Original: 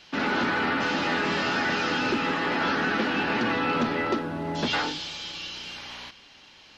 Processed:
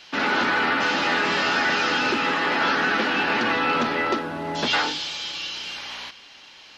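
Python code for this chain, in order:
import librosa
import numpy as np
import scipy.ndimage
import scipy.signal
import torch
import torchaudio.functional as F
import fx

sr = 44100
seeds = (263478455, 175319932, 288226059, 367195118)

y = fx.low_shelf(x, sr, hz=330.0, db=-10.0)
y = y * 10.0 ** (5.5 / 20.0)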